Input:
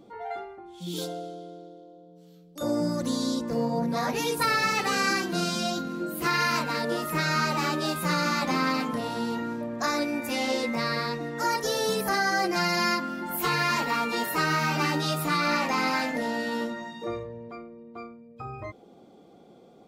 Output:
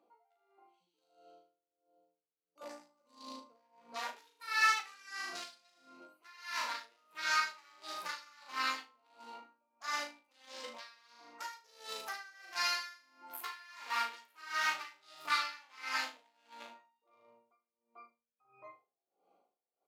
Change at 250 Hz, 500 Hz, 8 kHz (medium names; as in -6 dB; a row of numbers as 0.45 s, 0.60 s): -32.0 dB, -24.5 dB, -12.0 dB